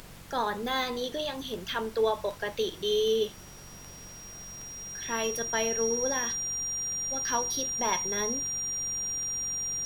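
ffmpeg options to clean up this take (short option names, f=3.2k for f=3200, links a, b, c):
-af "adeclick=t=4,bandreject=f=46.4:t=h:w=4,bandreject=f=92.8:t=h:w=4,bandreject=f=139.2:t=h:w=4,bandreject=f=185.6:t=h:w=4,bandreject=f=5.7k:w=30,afftdn=nr=30:nf=-46"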